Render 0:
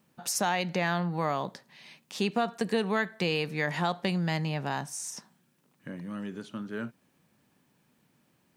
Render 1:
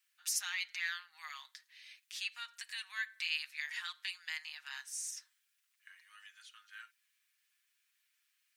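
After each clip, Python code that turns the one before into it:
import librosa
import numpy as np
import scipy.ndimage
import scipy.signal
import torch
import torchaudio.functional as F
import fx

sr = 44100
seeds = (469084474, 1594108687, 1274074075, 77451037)

y = scipy.signal.sosfilt(scipy.signal.cheby2(4, 60, 500.0, 'highpass', fs=sr, output='sos'), x)
y = y + 0.64 * np.pad(y, (int(6.4 * sr / 1000.0), 0))[:len(y)]
y = y * librosa.db_to_amplitude(-5.0)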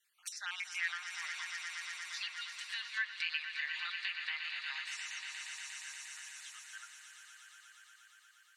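y = fx.spec_dropout(x, sr, seeds[0], share_pct=31)
y = fx.echo_swell(y, sr, ms=118, loudest=5, wet_db=-11.0)
y = fx.env_lowpass_down(y, sr, base_hz=3000.0, full_db=-36.5)
y = y * librosa.db_to_amplitude(3.0)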